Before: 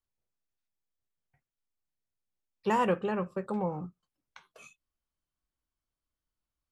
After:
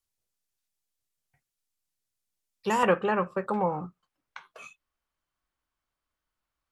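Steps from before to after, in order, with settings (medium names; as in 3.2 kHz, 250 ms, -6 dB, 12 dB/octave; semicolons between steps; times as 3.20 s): peaking EQ 9.6 kHz +10 dB 2.8 oct, from 2.83 s 1.3 kHz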